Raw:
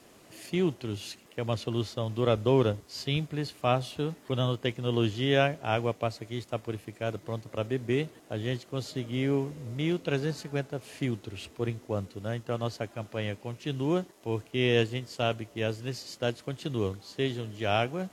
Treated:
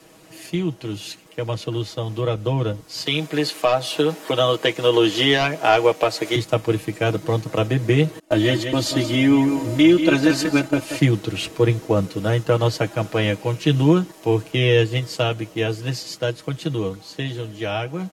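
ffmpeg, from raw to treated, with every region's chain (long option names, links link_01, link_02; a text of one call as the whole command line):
ffmpeg -i in.wav -filter_complex "[0:a]asettb=1/sr,asplit=3[link_01][link_02][link_03];[link_01]atrim=end=3.064[link_04];[link_02]atrim=start=3.06:end=6.36,asetpts=PTS-STARTPTS,afade=type=in:duration=0.004:curve=qsin,afade=type=out:start_time=3.296:duration=0.004:curve=qsin,highpass=350,aeval=exprs='0.266*sin(PI/2*1.41*val(0)/0.266)':channel_layout=same[link_05];[link_03]atrim=start=6.356[link_06];[link_04][link_05]acrossfade=duration=0.004:curve1=hsin:curve2=qsin[link_07];[link_07][link_06]acrossfade=duration=0.004:curve1=qsin:curve2=hsin,asettb=1/sr,asplit=3[link_08][link_09][link_10];[link_08]atrim=end=8.194[link_11];[link_09]atrim=start=8.19:end=11.01,asetpts=PTS-STARTPTS,afade=type=in:duration=0.004:curve=qsin,afade=type=out:start_time=2.816:duration=0.004:curve=qsin,agate=range=-33dB:threshold=-45dB:ratio=3:release=100:detection=peak,aecho=1:1:3.3:0.86,atrim=end_sample=124362,aecho=1:1:181:0.316,atrim=end_sample=124362[link_12];[link_10]atrim=start=11.006[link_13];[link_11][link_12]acrossfade=duration=0.004:curve1=hsin:curve2=qsin[link_14];[link_14][link_13]acrossfade=duration=0.004:curve1=qsin:curve2=hsin,acrossover=split=130[link_15][link_16];[link_16]acompressor=threshold=-29dB:ratio=3[link_17];[link_15][link_17]amix=inputs=2:normalize=0,aecho=1:1:6.3:0.78,dynaudnorm=framelen=620:gausssize=13:maxgain=9dB,volume=4.5dB" out.wav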